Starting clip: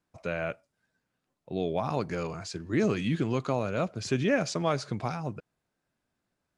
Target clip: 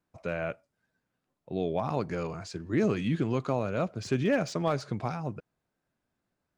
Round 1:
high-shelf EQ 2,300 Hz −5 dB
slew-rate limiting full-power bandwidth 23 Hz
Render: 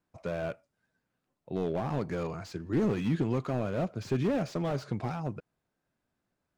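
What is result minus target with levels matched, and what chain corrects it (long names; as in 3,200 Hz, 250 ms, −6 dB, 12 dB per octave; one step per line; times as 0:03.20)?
slew-rate limiting: distortion +21 dB
high-shelf EQ 2,300 Hz −5 dB
slew-rate limiting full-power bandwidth 83.5 Hz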